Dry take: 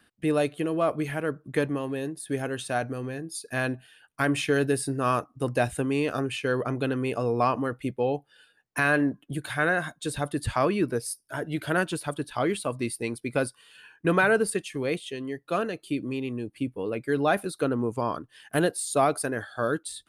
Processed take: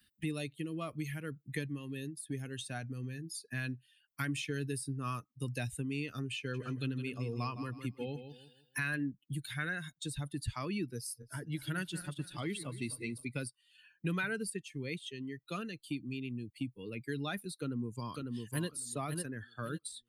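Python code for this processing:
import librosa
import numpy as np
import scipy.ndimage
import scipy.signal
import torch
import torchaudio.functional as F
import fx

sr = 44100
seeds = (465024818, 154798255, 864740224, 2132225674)

y = fx.echo_feedback(x, sr, ms=160, feedback_pct=35, wet_db=-8, at=(6.53, 8.94), fade=0.02)
y = fx.reverse_delay_fb(y, sr, ms=132, feedback_pct=63, wet_db=-9.5, at=(10.96, 13.25))
y = fx.echo_throw(y, sr, start_s=17.58, length_s=1.1, ms=550, feedback_pct=30, wet_db=-4.5)
y = fx.bin_expand(y, sr, power=1.5)
y = fx.tone_stack(y, sr, knobs='6-0-2')
y = fx.band_squash(y, sr, depth_pct=70)
y = y * librosa.db_to_amplitude(12.5)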